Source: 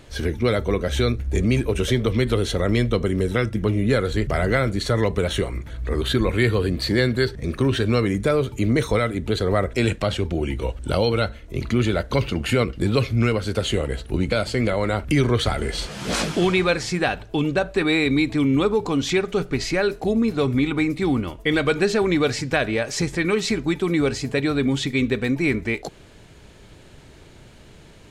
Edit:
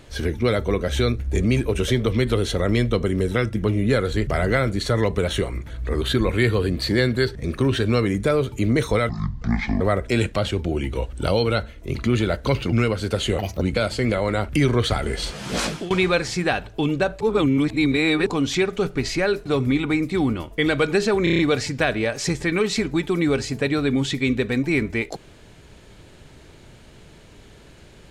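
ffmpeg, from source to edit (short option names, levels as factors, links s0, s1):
-filter_complex "[0:a]asplit=15[s0][s1][s2][s3][s4][s5][s6][s7][s8][s9][s10][s11][s12][s13][s14];[s0]atrim=end=9.094[s15];[s1]atrim=start=9.09:end=9.47,asetpts=PTS-STARTPTS,asetrate=23373,aresample=44100[s16];[s2]atrim=start=9.466:end=12.392[s17];[s3]atrim=start=13.168:end=13.834[s18];[s4]atrim=start=13.83:end=14.17,asetpts=PTS-STARTPTS,asetrate=65709,aresample=44100,atrim=end_sample=10063,asetpts=PTS-STARTPTS[s19];[s5]atrim=start=14.166:end=16.46,asetpts=PTS-STARTPTS,afade=t=out:st=1.904:d=0.39:c=qsin:silence=0.105925[s20];[s6]atrim=start=16.46:end=17.762,asetpts=PTS-STARTPTS,afade=t=in:d=0.004:c=hsin:silence=0.105925[s21];[s7]atrim=start=17.758:end=18.822,asetpts=PTS-STARTPTS,areverse[s22];[s8]atrim=start=18.818:end=20.012[s23];[s9]atrim=start=20.328:end=22.142[s24];[s10]atrim=start=22.108:end=22.142[s25];[s11]atrim=start=22.108:end=22.142[s26];[s12]atrim=start=22.108:end=22.142[s27];[s13]atrim=start=22.108:end=22.142[s28];[s14]atrim=start=22.108[s29];[s15][s16]acrossfade=d=0.004:c1=hsin:c2=hsin[s30];[s30][s17]acrossfade=d=0.004:c1=hsin:c2=hsin[s31];[s31][s18]acrossfade=d=0.004:c1=hsin:c2=hsin[s32];[s32][s19]acrossfade=d=0.004:c1=hsin:c2=hsin[s33];[s20][s21]concat=n=2:v=0:a=1[s34];[s33][s34]acrossfade=d=0.004:c1=hsin:c2=hsin[s35];[s35][s22]acrossfade=d=0.004:c1=hsin:c2=hsin[s36];[s36][s23]acrossfade=d=0.004:c1=hsin:c2=hsin[s37];[s37][s24]acrossfade=d=0.004:c1=hsin:c2=hsin[s38];[s38][s25]acrossfade=d=0.004:c1=hsin:c2=hsin[s39];[s39][s26]acrossfade=d=0.004:c1=hsin:c2=hsin[s40];[s40][s27]acrossfade=d=0.004:c1=hsin:c2=hsin[s41];[s41][s28]acrossfade=d=0.004:c1=hsin:c2=hsin[s42];[s42][s29]acrossfade=d=0.004:c1=hsin:c2=hsin"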